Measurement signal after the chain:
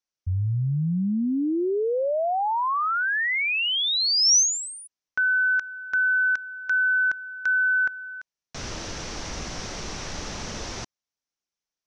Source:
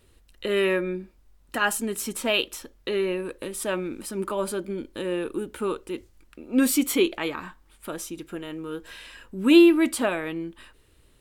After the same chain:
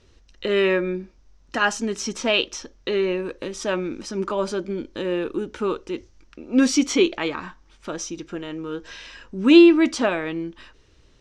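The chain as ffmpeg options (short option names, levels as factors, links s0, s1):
-af "lowpass=f=5900:t=q:w=5.3,aemphasis=mode=reproduction:type=50fm,volume=1.41"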